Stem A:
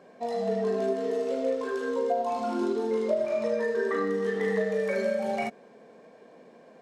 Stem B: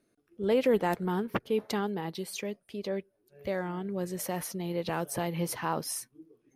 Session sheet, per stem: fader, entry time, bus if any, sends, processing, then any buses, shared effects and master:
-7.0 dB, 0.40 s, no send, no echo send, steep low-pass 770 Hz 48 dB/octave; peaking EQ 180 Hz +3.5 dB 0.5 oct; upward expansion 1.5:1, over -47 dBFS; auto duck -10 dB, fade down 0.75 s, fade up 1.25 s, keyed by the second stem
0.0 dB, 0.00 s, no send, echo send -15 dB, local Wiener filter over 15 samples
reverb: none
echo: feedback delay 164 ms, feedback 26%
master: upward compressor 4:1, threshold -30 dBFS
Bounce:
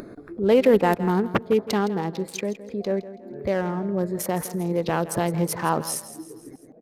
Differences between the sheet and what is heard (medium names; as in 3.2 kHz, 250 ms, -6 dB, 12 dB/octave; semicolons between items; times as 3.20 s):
stem A: entry 0.40 s -> 0.70 s; stem B 0.0 dB -> +8.5 dB